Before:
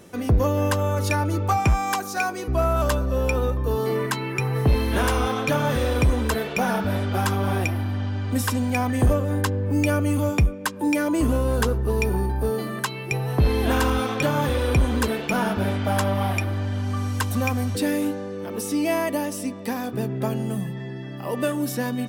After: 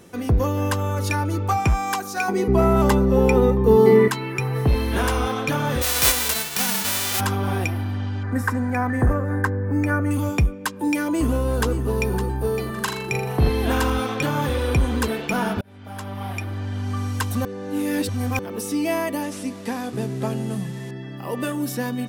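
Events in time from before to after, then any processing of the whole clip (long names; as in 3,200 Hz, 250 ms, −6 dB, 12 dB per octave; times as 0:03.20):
0:02.28–0:04.08: hollow resonant body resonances 210/400/820/2,000 Hz, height 17 dB, ringing for 55 ms
0:05.81–0:07.19: spectral envelope flattened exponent 0.1
0:08.23–0:10.11: high shelf with overshoot 2,300 Hz −9.5 dB, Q 3
0:11.04–0:12.14: delay throw 560 ms, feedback 30%, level −10.5 dB
0:12.73–0:13.49: flutter between parallel walls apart 7 metres, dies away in 0.5 s
0:15.61–0:16.94: fade in
0:17.45–0:18.39: reverse
0:19.22–0:20.91: linear delta modulator 64 kbit/s, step −39 dBFS
whole clip: notch filter 600 Hz, Q 14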